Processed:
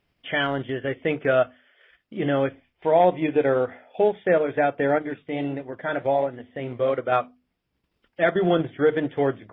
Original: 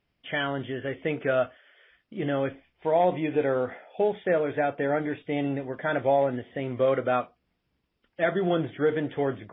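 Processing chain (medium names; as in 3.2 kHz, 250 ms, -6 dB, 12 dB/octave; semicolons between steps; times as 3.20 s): hum notches 50/100/150/200/250 Hz; transient shaper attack -1 dB, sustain -7 dB; 4.98–7.12 s: flange 1.5 Hz, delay 2.2 ms, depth 8 ms, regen -74%; trim +5 dB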